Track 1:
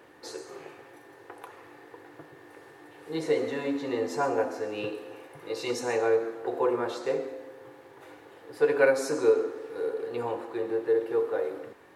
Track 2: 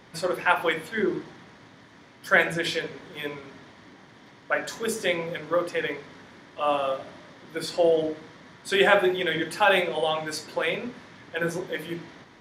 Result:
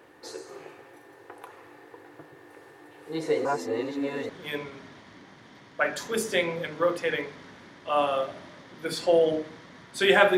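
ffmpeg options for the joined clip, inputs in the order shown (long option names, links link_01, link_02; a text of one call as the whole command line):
ffmpeg -i cue0.wav -i cue1.wav -filter_complex "[0:a]apad=whole_dur=10.37,atrim=end=10.37,asplit=2[link_01][link_02];[link_01]atrim=end=3.452[link_03];[link_02]atrim=start=3.448:end=4.292,asetpts=PTS-STARTPTS,areverse[link_04];[1:a]atrim=start=2.998:end=9.08[link_05];[link_03][link_04]acrossfade=duration=0.004:curve1=hsin:curve2=hsin[link_06];[link_06][link_05]acrossfade=duration=0.004:curve1=hsin:curve2=hsin" out.wav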